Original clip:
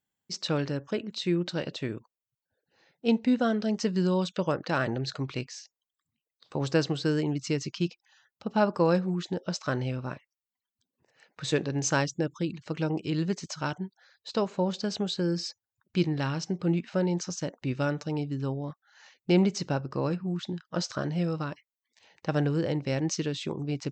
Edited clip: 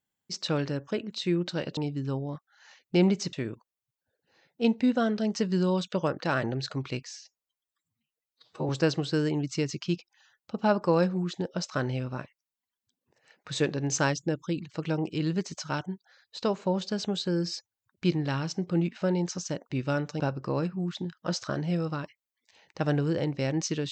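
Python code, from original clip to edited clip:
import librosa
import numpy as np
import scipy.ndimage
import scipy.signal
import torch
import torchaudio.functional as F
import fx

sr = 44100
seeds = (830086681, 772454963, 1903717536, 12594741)

y = fx.edit(x, sr, fx.stretch_span(start_s=5.57, length_s=1.04, factor=1.5),
    fx.move(start_s=18.12, length_s=1.56, to_s=1.77), tone=tone)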